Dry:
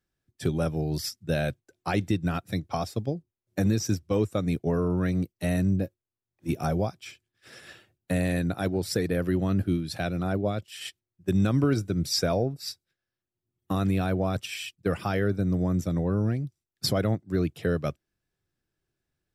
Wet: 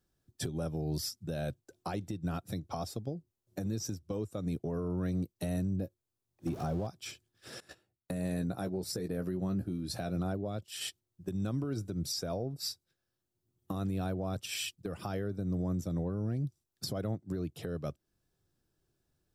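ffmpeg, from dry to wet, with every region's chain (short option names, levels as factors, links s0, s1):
-filter_complex "[0:a]asettb=1/sr,asplit=3[s0][s1][s2];[s0]atrim=end=6.474[s3];[s1]atrim=start=6.47:end=6.87,asetpts=PTS-STARTPTS,afade=t=in:d=0.004:c=qsin,afade=t=out:st=0.396:d=0.004:c=qsin,aeval=exprs='val(0)+0.5*0.0224*sgn(val(0))':c=same,highshelf=f=6200:g=-11.5[s4];[s2]atrim=start=6.866[s5];[s3][s4]acrossfade=d=0.004:c1=hsin:c2=qsin[s6];[s6][s5]acrossfade=d=0.004:c1=qsin:c2=hsin,asettb=1/sr,asplit=3[s7][s8][s9];[s7]atrim=end=7.604[s10];[s8]atrim=start=7.6:end=10.16,asetpts=PTS-STARTPTS,afade=t=in:d=0.004:c=qsin,afade=t=out:st=2.556:d=0.004:c=qsin,agate=range=0.126:threshold=0.00501:ratio=16:release=100:detection=peak,equalizer=f=3200:w=4.4:g=-6,asplit=2[s11][s12];[s12]adelay=16,volume=0.398[s13];[s11][s13]amix=inputs=2:normalize=0,atrim=end_sample=112896[s14];[s9]atrim=start=10.156[s15];[s10][s14]acrossfade=d=0.004:c1=hsin:c2=qsin[s16];[s16][s15]acrossfade=d=0.004:c1=qsin:c2=hsin,equalizer=f=2100:t=o:w=1.1:g=-8.5,acompressor=threshold=0.0282:ratio=6,alimiter=level_in=2.11:limit=0.0631:level=0:latency=1:release=304,volume=0.473,volume=1.68"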